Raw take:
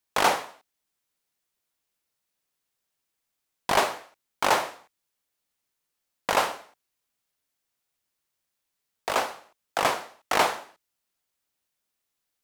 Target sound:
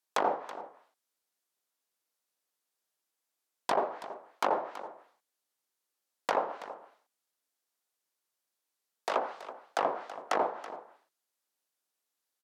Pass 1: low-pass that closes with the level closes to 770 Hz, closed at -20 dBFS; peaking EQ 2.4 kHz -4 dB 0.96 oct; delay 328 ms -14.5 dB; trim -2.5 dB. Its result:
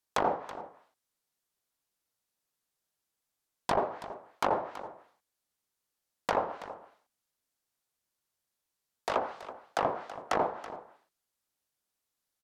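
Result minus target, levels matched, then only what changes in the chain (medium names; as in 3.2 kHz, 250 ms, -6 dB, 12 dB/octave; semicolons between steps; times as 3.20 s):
250 Hz band +2.5 dB
add after low-pass that closes with the level: high-pass 280 Hz 12 dB/octave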